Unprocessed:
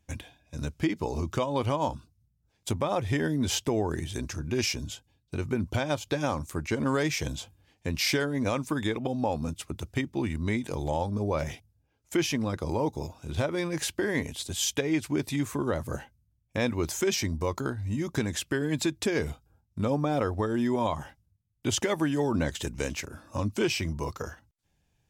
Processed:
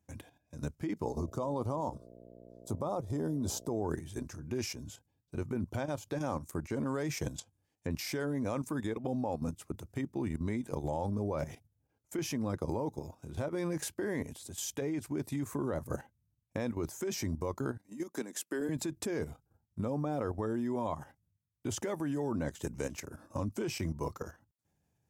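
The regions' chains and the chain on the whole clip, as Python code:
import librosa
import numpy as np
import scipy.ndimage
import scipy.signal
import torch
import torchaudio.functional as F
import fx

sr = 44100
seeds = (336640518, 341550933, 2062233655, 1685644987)

y = fx.highpass(x, sr, hz=44.0, slope=12, at=(1.04, 3.83), fade=0.02)
y = fx.band_shelf(y, sr, hz=2200.0, db=-13.0, octaves=1.2, at=(1.04, 3.83), fade=0.02)
y = fx.dmg_buzz(y, sr, base_hz=60.0, harmonics=11, level_db=-49.0, tilt_db=0, odd_only=False, at=(1.04, 3.83), fade=0.02)
y = fx.chain(y, sr, fx.env_lowpass_down(base_hz=2500.0, full_db=-31.5),
    fx.high_shelf(hz=4200.0, db=9.5),
    fx.transient(attack_db=0, sustain_db=-10), at=(7.38, 7.91))
y = fx.chain(y, sr, fx.highpass(hz=230.0, slope=24),
    fx.high_shelf(hz=4900.0, db=6.5),
    fx.upward_expand(threshold_db=-48.0, expansion=1.5), at=(17.77, 18.69))
y = scipy.signal.sosfilt(scipy.signal.butter(2, 86.0, 'highpass', fs=sr, output='sos'), y)
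y = fx.level_steps(y, sr, step_db=11)
y = fx.peak_eq(y, sr, hz=3200.0, db=-10.5, octaves=1.7)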